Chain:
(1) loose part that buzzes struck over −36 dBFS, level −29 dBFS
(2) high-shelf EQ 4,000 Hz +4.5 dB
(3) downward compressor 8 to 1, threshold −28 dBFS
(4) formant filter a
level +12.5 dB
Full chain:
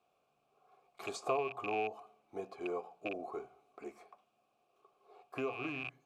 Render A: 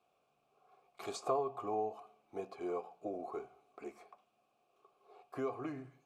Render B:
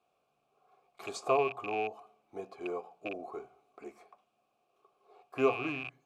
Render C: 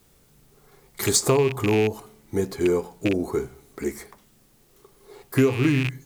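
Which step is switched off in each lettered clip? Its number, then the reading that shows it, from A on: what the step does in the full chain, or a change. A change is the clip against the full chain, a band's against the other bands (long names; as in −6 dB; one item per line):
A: 1, 2 kHz band −12.5 dB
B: 3, average gain reduction 1.5 dB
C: 4, 1 kHz band −14.5 dB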